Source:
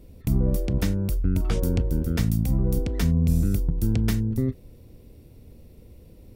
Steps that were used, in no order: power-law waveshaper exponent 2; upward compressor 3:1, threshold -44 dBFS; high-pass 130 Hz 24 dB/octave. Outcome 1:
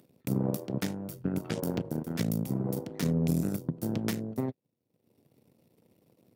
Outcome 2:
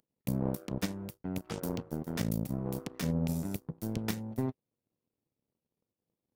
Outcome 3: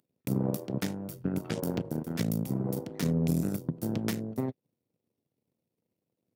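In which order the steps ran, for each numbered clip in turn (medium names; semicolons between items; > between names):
power-law waveshaper > upward compressor > high-pass; upward compressor > high-pass > power-law waveshaper; upward compressor > power-law waveshaper > high-pass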